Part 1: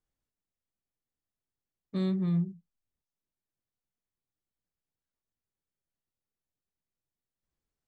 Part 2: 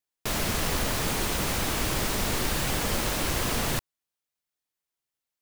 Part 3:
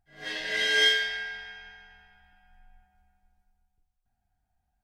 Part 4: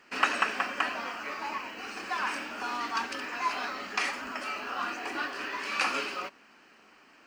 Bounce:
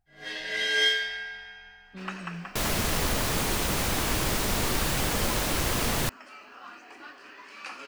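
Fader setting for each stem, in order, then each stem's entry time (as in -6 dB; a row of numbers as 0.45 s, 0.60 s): -12.0 dB, +0.5 dB, -1.5 dB, -12.0 dB; 0.00 s, 2.30 s, 0.00 s, 1.85 s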